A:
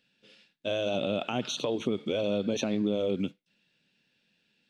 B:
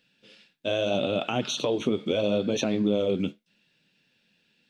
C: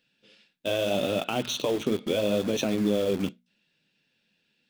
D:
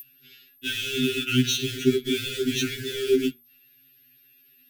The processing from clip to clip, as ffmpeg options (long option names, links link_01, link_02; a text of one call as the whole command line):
ffmpeg -i in.wav -af "flanger=delay=6.2:depth=6.2:regen=-61:speed=0.77:shape=sinusoidal,volume=8dB" out.wav
ffmpeg -i in.wav -filter_complex "[0:a]bandreject=frequency=60:width_type=h:width=6,bandreject=frequency=120:width_type=h:width=6,bandreject=frequency=180:width_type=h:width=6,bandreject=frequency=240:width_type=h:width=6,asplit=2[link_01][link_02];[link_02]acrusher=bits=4:mix=0:aa=0.000001,volume=-6dB[link_03];[link_01][link_03]amix=inputs=2:normalize=0,volume=-4dB" out.wav
ffmpeg -i in.wav -af "aeval=exprs='val(0)+0.0282*sin(2*PI*13000*n/s)':channel_layout=same,asuperstop=centerf=770:order=20:qfactor=0.78,afftfilt=real='re*2.45*eq(mod(b,6),0)':imag='im*2.45*eq(mod(b,6),0)':win_size=2048:overlap=0.75,volume=8.5dB" out.wav